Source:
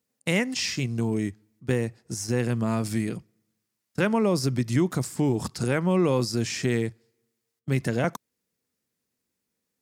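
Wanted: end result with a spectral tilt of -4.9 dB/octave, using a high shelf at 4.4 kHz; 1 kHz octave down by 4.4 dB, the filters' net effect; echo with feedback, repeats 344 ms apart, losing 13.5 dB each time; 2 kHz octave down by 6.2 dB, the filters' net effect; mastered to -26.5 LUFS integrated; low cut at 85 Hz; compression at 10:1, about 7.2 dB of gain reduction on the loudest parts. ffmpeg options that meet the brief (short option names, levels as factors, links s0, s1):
-af "highpass=85,equalizer=f=1000:t=o:g=-4,equalizer=f=2000:t=o:g=-7.5,highshelf=f=4400:g=3.5,acompressor=threshold=0.0501:ratio=10,aecho=1:1:344|688:0.211|0.0444,volume=1.88"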